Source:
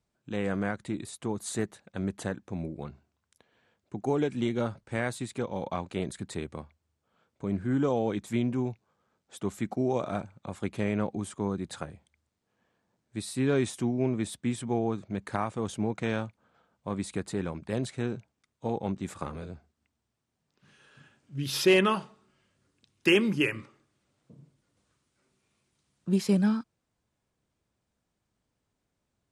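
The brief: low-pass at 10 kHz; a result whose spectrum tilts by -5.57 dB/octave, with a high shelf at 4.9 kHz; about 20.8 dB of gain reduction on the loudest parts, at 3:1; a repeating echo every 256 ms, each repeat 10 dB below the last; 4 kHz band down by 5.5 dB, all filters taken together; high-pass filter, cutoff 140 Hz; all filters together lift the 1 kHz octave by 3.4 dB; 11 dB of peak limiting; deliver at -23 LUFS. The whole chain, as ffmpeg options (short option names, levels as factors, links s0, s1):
-af "highpass=140,lowpass=10000,equalizer=f=1000:t=o:g=5,equalizer=f=4000:t=o:g=-7,highshelf=f=4900:g=-4,acompressor=threshold=0.00447:ratio=3,alimiter=level_in=5.01:limit=0.0631:level=0:latency=1,volume=0.2,aecho=1:1:256|512|768|1024:0.316|0.101|0.0324|0.0104,volume=21.1"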